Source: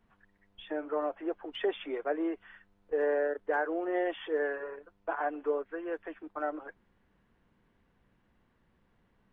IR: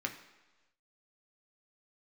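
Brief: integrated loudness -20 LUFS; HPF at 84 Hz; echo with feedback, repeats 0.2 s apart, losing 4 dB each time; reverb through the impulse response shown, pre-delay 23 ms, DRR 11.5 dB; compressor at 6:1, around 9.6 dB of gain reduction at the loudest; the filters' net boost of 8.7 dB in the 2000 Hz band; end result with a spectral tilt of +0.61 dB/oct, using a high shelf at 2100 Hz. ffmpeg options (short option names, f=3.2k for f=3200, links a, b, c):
-filter_complex "[0:a]highpass=84,equalizer=f=2k:t=o:g=8,highshelf=f=2.1k:g=6.5,acompressor=threshold=-34dB:ratio=6,aecho=1:1:200|400|600|800|1000|1200|1400|1600|1800:0.631|0.398|0.25|0.158|0.0994|0.0626|0.0394|0.0249|0.0157,asplit=2[a][b];[1:a]atrim=start_sample=2205,adelay=23[c];[b][c]afir=irnorm=-1:irlink=0,volume=-14.5dB[d];[a][d]amix=inputs=2:normalize=0,volume=16.5dB"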